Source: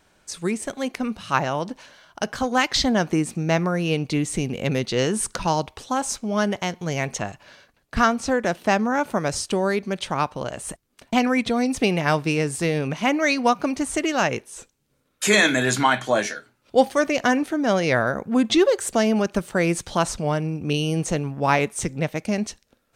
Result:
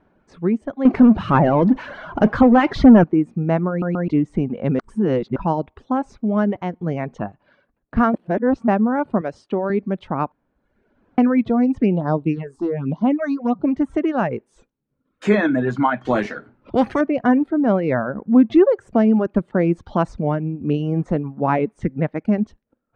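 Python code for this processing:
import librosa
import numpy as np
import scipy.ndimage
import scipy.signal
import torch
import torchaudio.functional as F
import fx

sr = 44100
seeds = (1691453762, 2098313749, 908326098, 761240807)

y = fx.power_curve(x, sr, exponent=0.5, at=(0.85, 3.04))
y = fx.highpass(y, sr, hz=330.0, slope=6, at=(9.21, 9.7))
y = fx.phaser_stages(y, sr, stages=6, low_hz=140.0, high_hz=2400.0, hz=fx.line((11.81, 0.68), (13.66, 2.2)), feedback_pct=25, at=(11.81, 13.66), fade=0.02)
y = fx.high_shelf(y, sr, hz=3400.0, db=9.0, at=(14.46, 15.33))
y = fx.spectral_comp(y, sr, ratio=2.0, at=(16.05, 17.01))
y = fx.peak_eq(y, sr, hz=8700.0, db=-13.5, octaves=0.77, at=(17.72, 18.26))
y = fx.high_shelf(y, sr, hz=3400.0, db=7.5, at=(19.85, 20.36))
y = fx.peak_eq(y, sr, hz=1800.0, db=6.0, octaves=0.7, at=(21.79, 22.36))
y = fx.edit(y, sr, fx.stutter_over(start_s=3.69, slice_s=0.13, count=3),
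    fx.reverse_span(start_s=4.79, length_s=0.57),
    fx.reverse_span(start_s=8.14, length_s=0.54),
    fx.room_tone_fill(start_s=10.32, length_s=0.86), tone=tone)
y = fx.dereverb_blind(y, sr, rt60_s=0.85)
y = scipy.signal.sosfilt(scipy.signal.butter(2, 1300.0, 'lowpass', fs=sr, output='sos'), y)
y = fx.peak_eq(y, sr, hz=240.0, db=7.0, octaves=1.3)
y = y * 10.0 ** (1.0 / 20.0)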